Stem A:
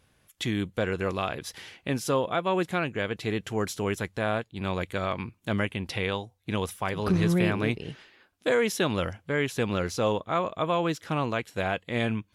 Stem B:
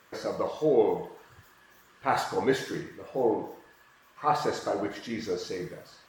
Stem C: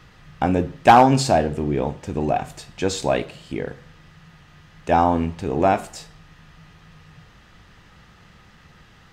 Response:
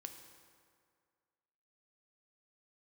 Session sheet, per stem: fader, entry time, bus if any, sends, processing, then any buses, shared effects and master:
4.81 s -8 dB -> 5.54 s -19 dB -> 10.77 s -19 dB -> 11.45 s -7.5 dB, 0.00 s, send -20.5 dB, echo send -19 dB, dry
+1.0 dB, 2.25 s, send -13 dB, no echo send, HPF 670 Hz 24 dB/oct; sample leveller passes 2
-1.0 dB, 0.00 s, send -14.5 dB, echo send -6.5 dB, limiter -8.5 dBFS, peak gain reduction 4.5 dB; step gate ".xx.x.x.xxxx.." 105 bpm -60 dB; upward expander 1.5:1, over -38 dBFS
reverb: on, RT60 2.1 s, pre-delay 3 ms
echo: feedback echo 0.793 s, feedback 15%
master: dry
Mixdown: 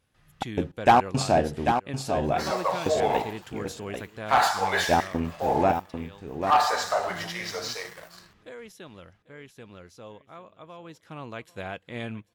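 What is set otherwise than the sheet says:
stem C: send -14.5 dB -> -20.5 dB; reverb return -7.0 dB

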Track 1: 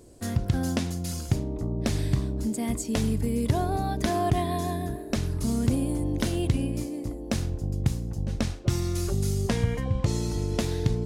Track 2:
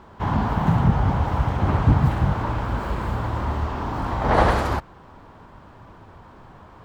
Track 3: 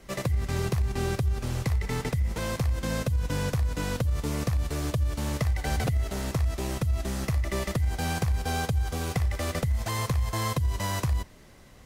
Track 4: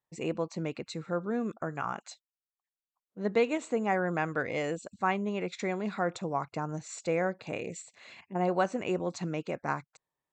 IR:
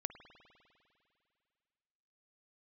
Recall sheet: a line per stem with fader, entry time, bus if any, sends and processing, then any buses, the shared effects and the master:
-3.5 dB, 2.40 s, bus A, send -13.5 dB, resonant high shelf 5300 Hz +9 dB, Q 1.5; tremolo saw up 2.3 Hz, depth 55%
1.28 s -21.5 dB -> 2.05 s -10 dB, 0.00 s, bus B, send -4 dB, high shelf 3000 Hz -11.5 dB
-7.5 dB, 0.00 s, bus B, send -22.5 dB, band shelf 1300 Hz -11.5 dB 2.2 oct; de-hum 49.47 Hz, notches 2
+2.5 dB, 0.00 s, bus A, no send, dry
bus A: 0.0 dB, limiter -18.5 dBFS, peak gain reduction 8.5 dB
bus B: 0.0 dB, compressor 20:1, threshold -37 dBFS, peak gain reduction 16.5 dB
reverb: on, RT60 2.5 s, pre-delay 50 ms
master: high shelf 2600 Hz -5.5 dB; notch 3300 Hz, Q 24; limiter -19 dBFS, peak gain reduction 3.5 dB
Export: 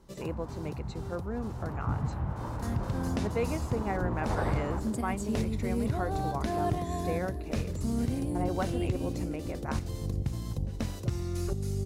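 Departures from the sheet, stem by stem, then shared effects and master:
stem 1: missing resonant high shelf 5300 Hz +9 dB, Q 1.5; stem 4 +2.5 dB -> -4.5 dB

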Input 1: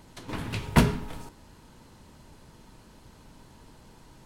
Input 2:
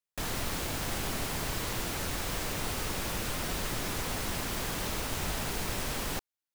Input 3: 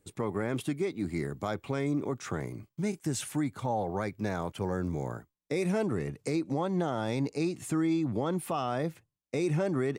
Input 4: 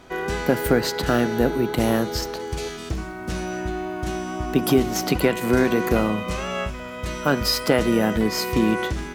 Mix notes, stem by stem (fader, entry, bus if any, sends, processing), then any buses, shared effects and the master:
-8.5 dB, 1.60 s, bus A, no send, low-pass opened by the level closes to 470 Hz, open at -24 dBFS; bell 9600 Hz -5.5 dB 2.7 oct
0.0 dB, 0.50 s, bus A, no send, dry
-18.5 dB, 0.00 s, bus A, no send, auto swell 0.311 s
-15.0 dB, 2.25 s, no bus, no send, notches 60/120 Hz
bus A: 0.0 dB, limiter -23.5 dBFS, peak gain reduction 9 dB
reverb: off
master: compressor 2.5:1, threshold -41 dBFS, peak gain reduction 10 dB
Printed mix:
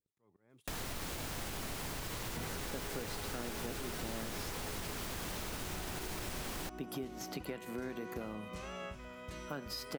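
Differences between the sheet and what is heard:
stem 1 -8.5 dB -> -15.5 dB; stem 3 -18.5 dB -> -27.0 dB

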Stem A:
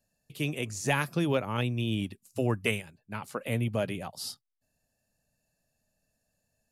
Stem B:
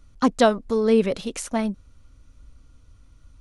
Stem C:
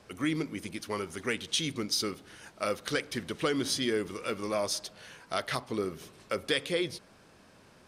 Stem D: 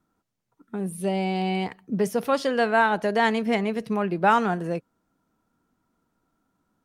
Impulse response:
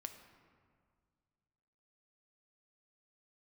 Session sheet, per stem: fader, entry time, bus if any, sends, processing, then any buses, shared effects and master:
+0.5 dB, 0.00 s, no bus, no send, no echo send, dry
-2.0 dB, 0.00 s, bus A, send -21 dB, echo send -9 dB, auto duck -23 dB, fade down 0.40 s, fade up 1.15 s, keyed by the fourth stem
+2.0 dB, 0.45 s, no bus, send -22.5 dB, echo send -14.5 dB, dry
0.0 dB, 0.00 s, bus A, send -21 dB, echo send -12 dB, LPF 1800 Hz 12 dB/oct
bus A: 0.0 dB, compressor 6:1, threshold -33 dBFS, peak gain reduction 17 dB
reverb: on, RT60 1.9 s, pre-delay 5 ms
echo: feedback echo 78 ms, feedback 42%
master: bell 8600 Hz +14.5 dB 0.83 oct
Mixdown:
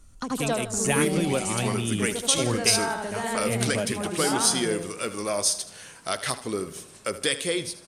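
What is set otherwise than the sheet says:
stem C: entry 0.45 s -> 0.75 s; stem D: missing LPF 1800 Hz 12 dB/oct

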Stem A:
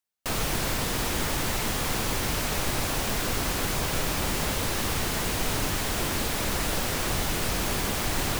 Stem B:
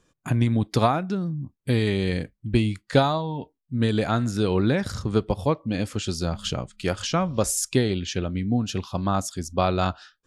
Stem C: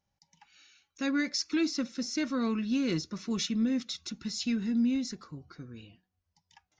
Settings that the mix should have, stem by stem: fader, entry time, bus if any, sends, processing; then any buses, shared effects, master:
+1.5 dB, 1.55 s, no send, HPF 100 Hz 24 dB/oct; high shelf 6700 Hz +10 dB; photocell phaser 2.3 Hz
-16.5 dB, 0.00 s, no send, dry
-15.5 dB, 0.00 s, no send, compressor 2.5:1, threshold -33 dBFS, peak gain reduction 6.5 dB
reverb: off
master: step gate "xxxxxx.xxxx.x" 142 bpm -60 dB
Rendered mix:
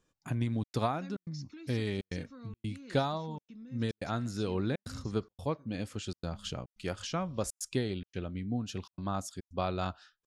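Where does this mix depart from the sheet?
stem A: muted; stem B -16.5 dB -> -10.5 dB

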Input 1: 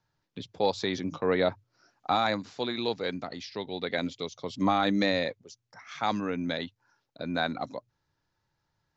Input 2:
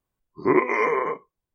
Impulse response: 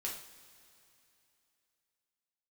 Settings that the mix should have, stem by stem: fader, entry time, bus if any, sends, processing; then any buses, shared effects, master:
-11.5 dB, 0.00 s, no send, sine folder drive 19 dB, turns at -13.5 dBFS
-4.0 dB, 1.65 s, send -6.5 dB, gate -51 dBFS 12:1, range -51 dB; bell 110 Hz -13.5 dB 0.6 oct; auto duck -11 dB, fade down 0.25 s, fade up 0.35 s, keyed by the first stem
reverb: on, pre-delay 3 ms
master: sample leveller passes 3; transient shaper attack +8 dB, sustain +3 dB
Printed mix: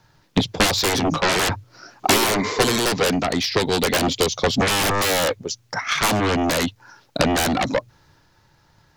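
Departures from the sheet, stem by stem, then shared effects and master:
stem 1 -11.5 dB -> -3.5 dB; master: missing sample leveller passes 3

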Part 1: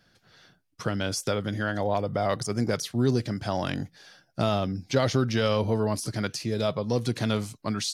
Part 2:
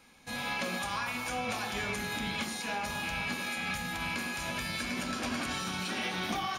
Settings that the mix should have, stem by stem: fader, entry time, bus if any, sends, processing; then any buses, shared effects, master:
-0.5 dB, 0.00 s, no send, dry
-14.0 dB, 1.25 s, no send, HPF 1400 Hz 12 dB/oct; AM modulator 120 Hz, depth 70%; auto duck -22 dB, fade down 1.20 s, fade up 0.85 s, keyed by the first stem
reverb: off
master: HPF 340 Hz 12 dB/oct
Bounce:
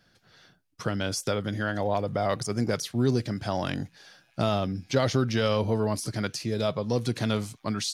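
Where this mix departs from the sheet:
stem 2 -14.0 dB -> -5.0 dB; master: missing HPF 340 Hz 12 dB/oct

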